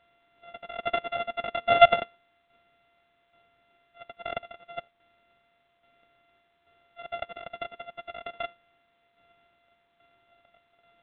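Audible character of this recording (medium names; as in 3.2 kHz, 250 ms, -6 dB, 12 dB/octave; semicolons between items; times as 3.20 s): a buzz of ramps at a fixed pitch in blocks of 64 samples; tremolo saw down 1.2 Hz, depth 65%; A-law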